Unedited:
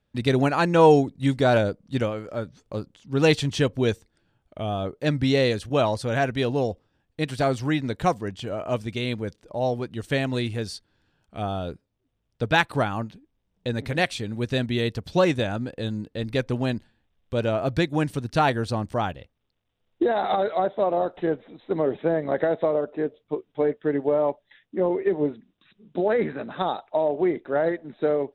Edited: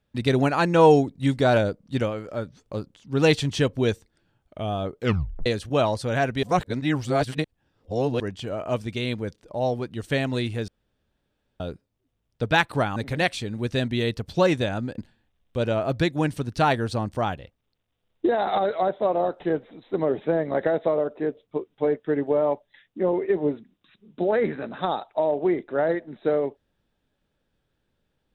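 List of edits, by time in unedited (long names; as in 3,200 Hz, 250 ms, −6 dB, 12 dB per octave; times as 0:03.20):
0:04.98: tape stop 0.48 s
0:06.43–0:08.20: reverse
0:10.68–0:11.60: fill with room tone
0:12.96–0:13.74: remove
0:15.76–0:16.75: remove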